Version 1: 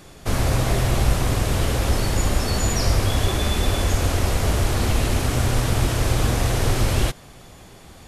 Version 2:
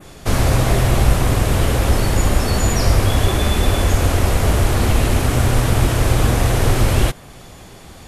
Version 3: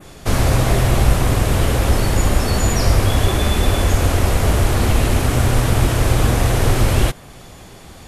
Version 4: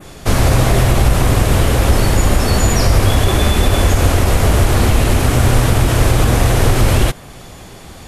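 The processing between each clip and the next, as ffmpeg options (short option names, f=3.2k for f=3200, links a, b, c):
-af "adynamicequalizer=threshold=0.00562:dfrequency=5100:dqfactor=0.92:tfrequency=5100:tqfactor=0.92:attack=5:release=100:ratio=0.375:range=2:mode=cutabove:tftype=bell,volume=5dB"
-af anull
-af "alimiter=level_in=5dB:limit=-1dB:release=50:level=0:latency=1,volume=-1dB"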